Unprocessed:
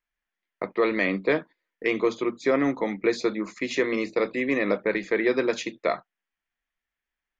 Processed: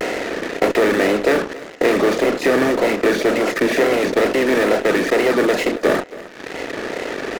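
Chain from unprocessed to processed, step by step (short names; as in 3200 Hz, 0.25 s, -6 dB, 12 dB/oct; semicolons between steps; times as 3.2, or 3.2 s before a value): per-bin compression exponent 0.2; LPF 2300 Hz 6 dB/oct; reverb removal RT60 1.9 s; HPF 180 Hz 12 dB/oct; notch comb 1100 Hz; wow and flutter 130 cents; in parallel at -6 dB: fuzz box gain 34 dB, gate -36 dBFS; on the sum: echo 0.275 s -18.5 dB; gain -1 dB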